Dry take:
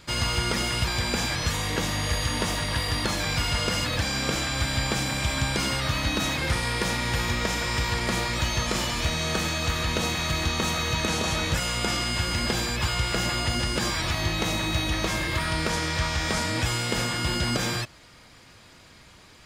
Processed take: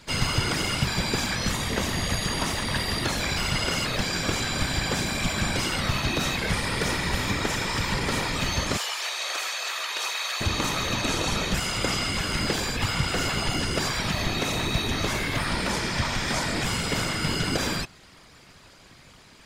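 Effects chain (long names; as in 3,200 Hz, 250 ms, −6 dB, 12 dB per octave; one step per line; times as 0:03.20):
0:08.77–0:10.41: Bessel high-pass filter 900 Hz, order 8
random phases in short frames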